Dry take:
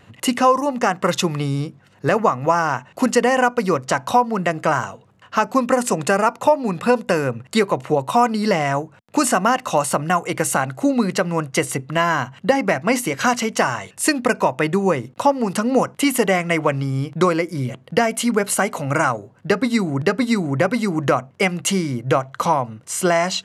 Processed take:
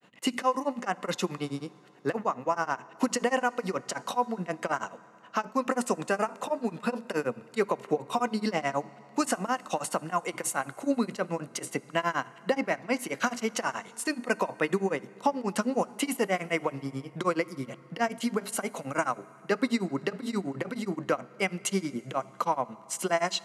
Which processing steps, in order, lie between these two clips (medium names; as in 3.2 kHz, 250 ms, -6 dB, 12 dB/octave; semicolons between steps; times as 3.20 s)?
high-pass 180 Hz 24 dB/octave; peak limiter -9 dBFS, peak gain reduction 7 dB; granulator 115 ms, grains 9.4 per s, spray 10 ms, pitch spread up and down by 0 st; reverberation RT60 3.7 s, pre-delay 4 ms, DRR 19 dB; trim -5 dB